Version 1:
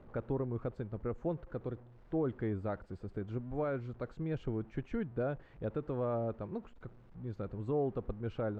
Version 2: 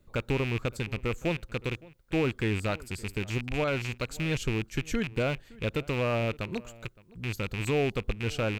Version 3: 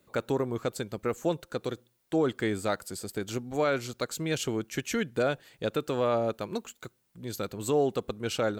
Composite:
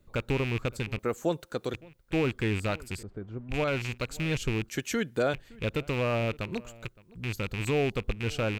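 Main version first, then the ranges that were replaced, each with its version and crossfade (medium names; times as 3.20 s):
2
0.99–1.74 s: from 3
3.03–3.49 s: from 1
4.69–5.34 s: from 3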